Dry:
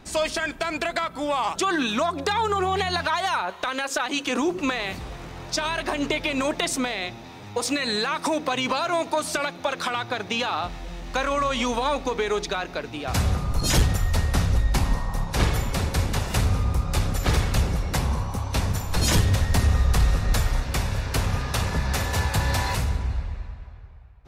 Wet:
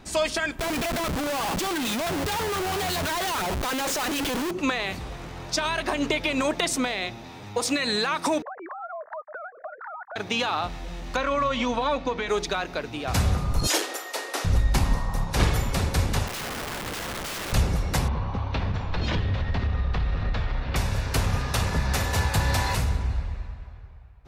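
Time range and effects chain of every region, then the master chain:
0.59–4.51 LFO notch saw up 6.1 Hz 830–1900 Hz + Schmitt trigger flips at -40.5 dBFS
8.42–10.16 sine-wave speech + steep low-pass 1800 Hz 72 dB/oct + compressor 3:1, threshold -37 dBFS
11.16–12.29 LPF 4500 Hz + notch comb 410 Hz
13.67–14.45 Chebyshev high-pass 310 Hz, order 5 + doubler 30 ms -11 dB
16.27–17.53 LPF 1900 Hz + bell 110 Hz -10.5 dB 0.33 oct + wrapped overs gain 28 dB
18.08–20.76 LPF 3800 Hz 24 dB/oct + compressor 4:1, threshold -22 dBFS
whole clip: dry

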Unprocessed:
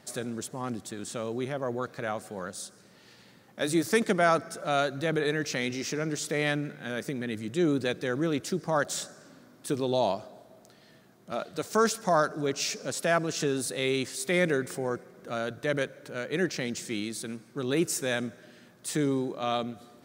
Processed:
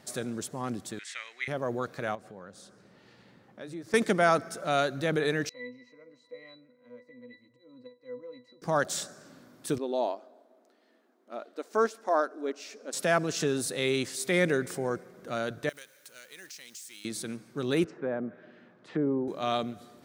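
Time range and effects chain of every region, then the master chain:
0.99–1.48 resonant high-pass 2000 Hz, resonance Q 8 + air absorption 59 m
2.15–3.94 LPF 1900 Hz 6 dB/oct + compressor 2:1, threshold -48 dBFS
5.49–8.62 HPF 470 Hz + auto swell 0.241 s + octave resonator B, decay 0.19 s
9.78–12.93 brick-wall FIR high-pass 220 Hz + high shelf 2700 Hz -11.5 dB + upward expander, over -34 dBFS
15.69–17.05 G.711 law mismatch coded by mu + pre-emphasis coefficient 0.97 + compressor 3:1, threshold -43 dBFS
17.84–19.28 treble ducked by the level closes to 940 Hz, closed at -26.5 dBFS + BPF 170–2100 Hz
whole clip: dry

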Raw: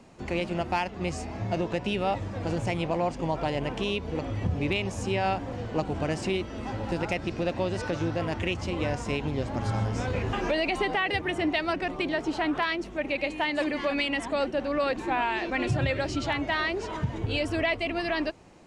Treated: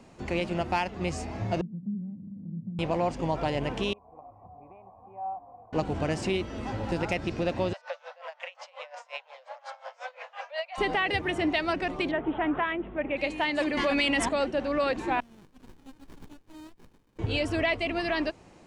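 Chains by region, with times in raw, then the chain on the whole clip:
1.61–2.79 sample sorter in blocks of 16 samples + Butterworth band-pass 190 Hz, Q 3.3 + upward compressor, threshold -36 dBFS
3.93–5.73 vocal tract filter a + air absorption 470 m
7.73–10.78 steep high-pass 520 Hz 96 dB/oct + air absorption 97 m + dB-linear tremolo 5.6 Hz, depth 23 dB
12.11–13.17 LPF 2100 Hz + careless resampling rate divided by 6×, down none, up filtered
13.77–14.29 high shelf 7600 Hz +5.5 dB + fast leveller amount 70%
15.2–17.19 steep high-pass 2700 Hz 96 dB/oct + differentiator + running maximum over 65 samples
whole clip: dry

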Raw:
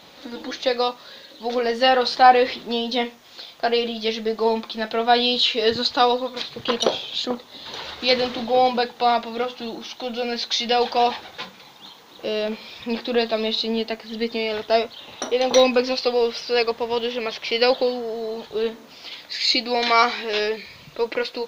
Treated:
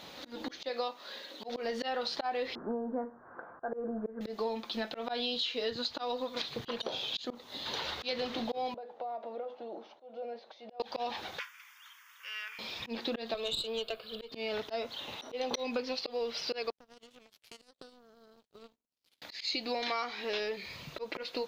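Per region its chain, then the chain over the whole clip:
0.69–1.49 brick-wall FIR high-pass 160 Hz + tone controls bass -7 dB, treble -3 dB
2.55–4.21 Chebyshev low-pass 1600 Hz, order 6 + mismatched tape noise reduction encoder only
8.74–10.8 compressor 16:1, threshold -28 dBFS + band-pass 590 Hz, Q 2.6
11.39–12.59 HPF 1200 Hz 24 dB/oct + fixed phaser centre 1700 Hz, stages 4
13.34–14.32 dynamic EQ 3500 Hz, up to +5 dB, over -35 dBFS, Q 1.6 + fixed phaser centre 1300 Hz, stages 8 + tube stage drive 15 dB, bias 0.55
16.7–19.22 compressor 3:1, threshold -28 dBFS + bell 1300 Hz -15 dB 2.1 oct + power-law curve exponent 3
whole clip: auto swell 0.244 s; compressor 6:1, threshold -30 dBFS; gain -2 dB

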